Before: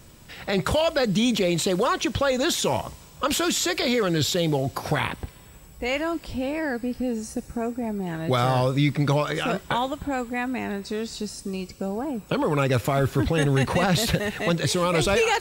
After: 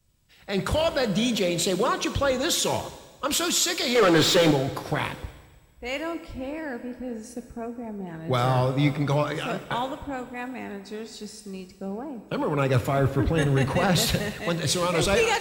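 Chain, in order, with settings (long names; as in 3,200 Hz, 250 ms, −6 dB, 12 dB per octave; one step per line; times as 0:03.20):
0:03.95–0:04.51: mid-hump overdrive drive 28 dB, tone 2,100 Hz, clips at −11.5 dBFS
dense smooth reverb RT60 2.9 s, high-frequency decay 1×, DRR 9.5 dB
multiband upward and downward expander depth 70%
level −2 dB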